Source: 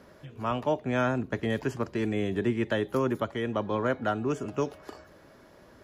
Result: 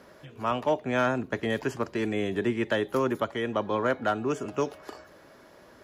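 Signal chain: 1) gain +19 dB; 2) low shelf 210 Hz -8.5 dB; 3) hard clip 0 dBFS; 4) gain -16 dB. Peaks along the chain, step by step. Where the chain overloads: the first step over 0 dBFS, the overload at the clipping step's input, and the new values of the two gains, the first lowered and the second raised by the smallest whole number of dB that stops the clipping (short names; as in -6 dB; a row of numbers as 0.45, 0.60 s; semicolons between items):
+4.0, +3.0, 0.0, -16.0 dBFS; step 1, 3.0 dB; step 1 +16 dB, step 4 -13 dB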